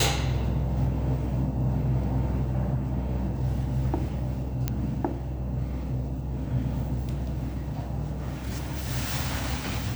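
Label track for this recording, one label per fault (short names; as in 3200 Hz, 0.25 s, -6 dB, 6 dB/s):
4.680000	4.680000	pop -12 dBFS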